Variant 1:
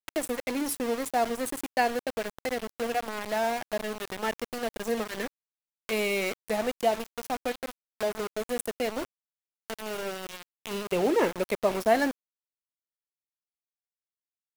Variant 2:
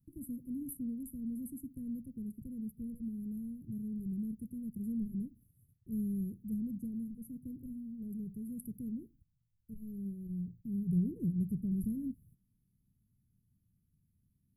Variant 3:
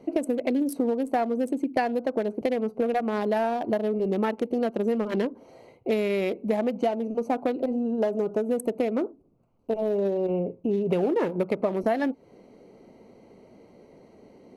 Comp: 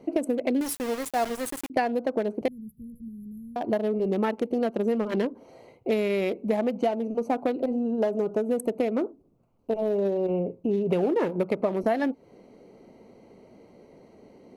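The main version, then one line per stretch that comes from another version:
3
0.61–1.7 from 1
2.48–3.56 from 2

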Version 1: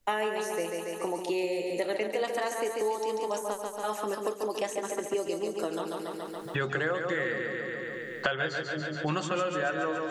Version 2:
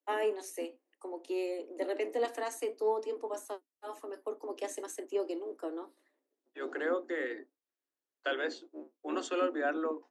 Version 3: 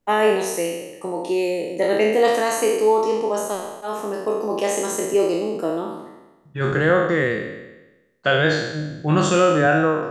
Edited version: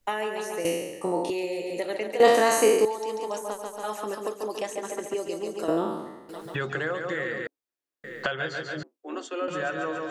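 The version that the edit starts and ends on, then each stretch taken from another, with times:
1
0.65–1.3 from 3
2.2–2.85 from 3
5.68–6.29 from 3
7.47–8.04 from 2
8.83–9.48 from 2

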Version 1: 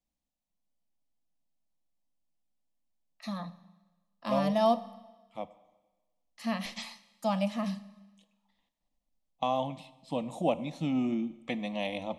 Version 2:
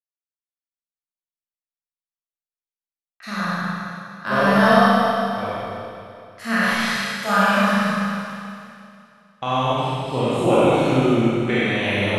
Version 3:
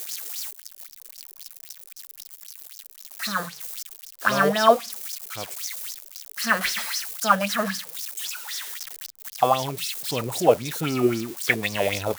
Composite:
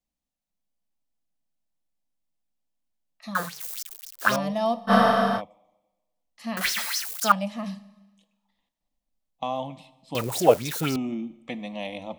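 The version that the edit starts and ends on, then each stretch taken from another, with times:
1
3.35–4.36 from 3
4.9–5.39 from 2, crossfade 0.06 s
6.57–7.32 from 3
10.15–10.96 from 3

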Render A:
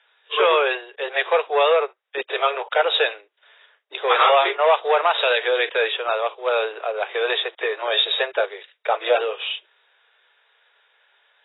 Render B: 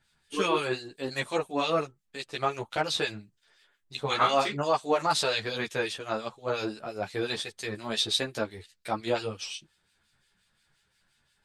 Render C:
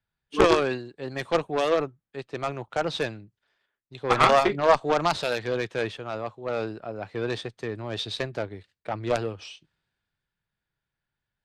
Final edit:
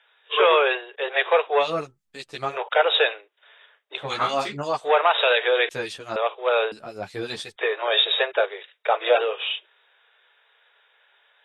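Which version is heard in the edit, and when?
A
1.63–2.54 from B, crossfade 0.10 s
4.02–4.85 from B, crossfade 0.16 s
5.69–6.16 from B
6.72–7.56 from B
not used: C

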